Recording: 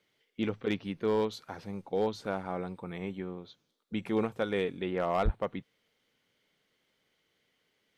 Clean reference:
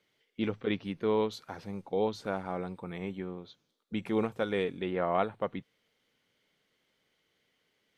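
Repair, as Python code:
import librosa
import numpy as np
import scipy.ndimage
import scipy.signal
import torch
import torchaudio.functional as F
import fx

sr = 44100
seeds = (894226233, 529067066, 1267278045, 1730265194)

y = fx.fix_declip(x, sr, threshold_db=-20.5)
y = fx.fix_deplosive(y, sr, at_s=(5.24,))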